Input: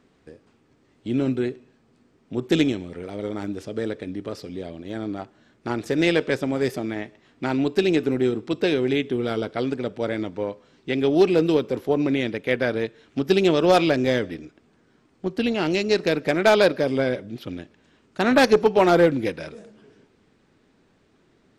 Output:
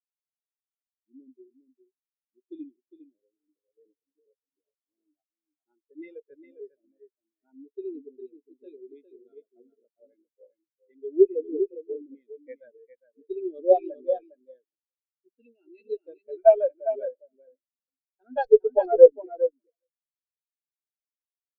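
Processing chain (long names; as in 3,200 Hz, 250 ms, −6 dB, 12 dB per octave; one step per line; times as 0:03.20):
RIAA equalisation recording
harmonic generator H 4 −8 dB, 5 −25 dB, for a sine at 1.5 dBFS
on a send: repeating echo 406 ms, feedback 17%, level −3 dB
on the sum: every bin expanded away from the loudest bin 4 to 1
level −3 dB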